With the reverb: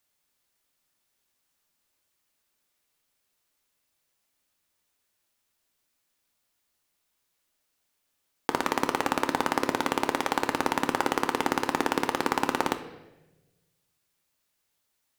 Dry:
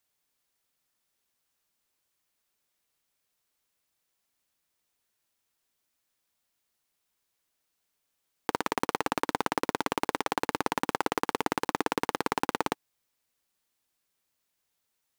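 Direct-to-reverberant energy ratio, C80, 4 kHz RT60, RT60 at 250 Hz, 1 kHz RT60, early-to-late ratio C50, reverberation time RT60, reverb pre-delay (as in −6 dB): 7.0 dB, 13.5 dB, 0.90 s, 1.3 s, 0.90 s, 11.5 dB, 1.1 s, 3 ms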